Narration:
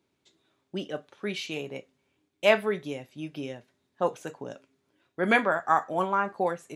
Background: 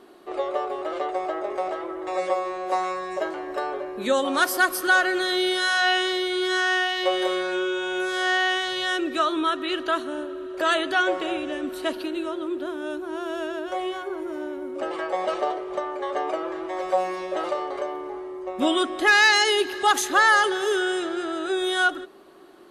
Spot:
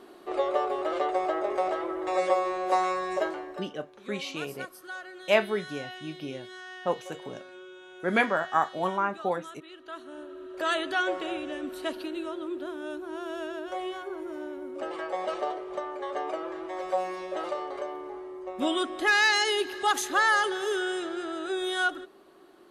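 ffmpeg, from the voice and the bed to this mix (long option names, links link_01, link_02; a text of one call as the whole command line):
ffmpeg -i stem1.wav -i stem2.wav -filter_complex "[0:a]adelay=2850,volume=-1.5dB[link_01];[1:a]volume=15.5dB,afade=type=out:start_time=3.17:duration=0.5:silence=0.0891251,afade=type=in:start_time=9.81:duration=0.9:silence=0.16788[link_02];[link_01][link_02]amix=inputs=2:normalize=0" out.wav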